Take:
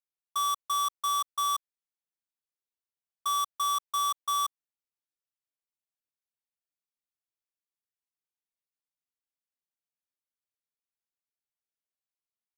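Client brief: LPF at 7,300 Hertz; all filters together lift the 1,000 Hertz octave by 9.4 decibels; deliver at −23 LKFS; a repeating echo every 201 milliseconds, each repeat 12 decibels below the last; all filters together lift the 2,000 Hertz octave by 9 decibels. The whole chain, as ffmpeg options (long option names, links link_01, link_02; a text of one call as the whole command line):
ffmpeg -i in.wav -af "lowpass=7300,equalizer=frequency=1000:width_type=o:gain=8,equalizer=frequency=2000:width_type=o:gain=9,aecho=1:1:201|402|603:0.251|0.0628|0.0157,volume=-2dB" out.wav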